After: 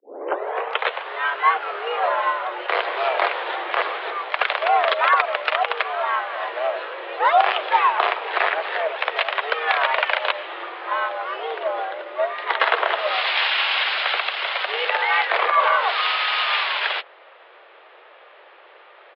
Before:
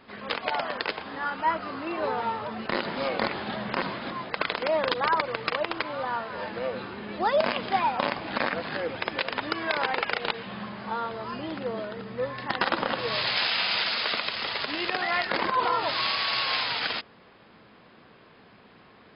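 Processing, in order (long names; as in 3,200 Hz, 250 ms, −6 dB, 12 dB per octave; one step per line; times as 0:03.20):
turntable start at the beginning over 1.10 s
pitch-shifted copies added −3 semitones −11 dB, +7 semitones −17 dB, +12 semitones −14 dB
single-sideband voice off tune +140 Hz 310–3,400 Hz
level +7 dB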